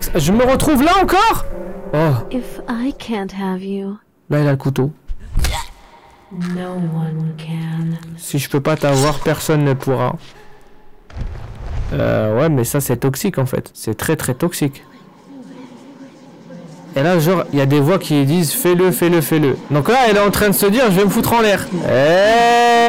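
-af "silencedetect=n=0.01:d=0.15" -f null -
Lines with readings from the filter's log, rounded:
silence_start: 4.00
silence_end: 4.29 | silence_duration: 0.30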